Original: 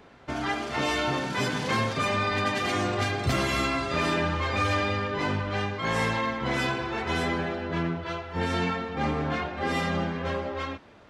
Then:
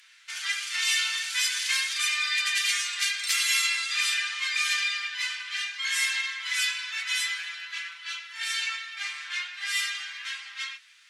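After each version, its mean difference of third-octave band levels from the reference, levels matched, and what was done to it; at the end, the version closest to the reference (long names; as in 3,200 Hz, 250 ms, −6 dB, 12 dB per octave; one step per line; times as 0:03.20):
23.0 dB: inverse Chebyshev high-pass filter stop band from 550 Hz, stop band 60 dB
parametric band 9,700 Hz +11 dB 1.6 octaves
flanger 0.46 Hz, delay 9 ms, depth 3 ms, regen −42%
level +8.5 dB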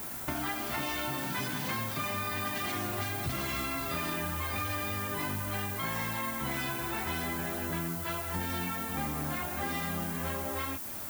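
8.5 dB: parametric band 470 Hz −11.5 dB 0.34 octaves
downward compressor 6 to 1, threshold −41 dBFS, peak gain reduction 18 dB
background noise violet −48 dBFS
level +7.5 dB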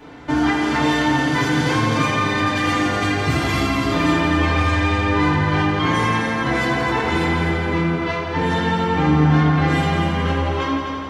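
4.0 dB: downward compressor, threshold −30 dBFS, peak gain reduction 9 dB
echo machine with several playback heads 85 ms, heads all three, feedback 62%, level −10 dB
feedback delay network reverb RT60 0.37 s, low-frequency decay 1.5×, high-frequency decay 0.75×, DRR −6.5 dB
level +3.5 dB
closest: third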